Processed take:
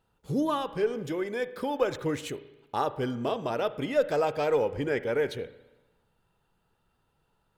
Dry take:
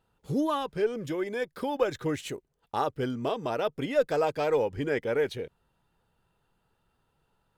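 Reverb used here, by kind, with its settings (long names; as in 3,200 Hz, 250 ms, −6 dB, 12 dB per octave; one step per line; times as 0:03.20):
spring reverb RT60 1.1 s, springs 34/56 ms, chirp 55 ms, DRR 13.5 dB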